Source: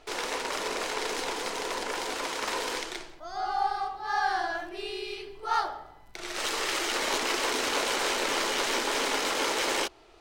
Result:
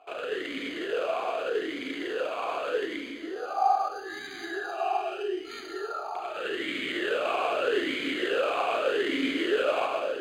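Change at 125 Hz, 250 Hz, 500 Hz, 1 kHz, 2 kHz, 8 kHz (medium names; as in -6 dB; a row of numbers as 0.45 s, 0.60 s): no reading, +5.5 dB, +5.5 dB, 0.0 dB, -1.5 dB, -18.0 dB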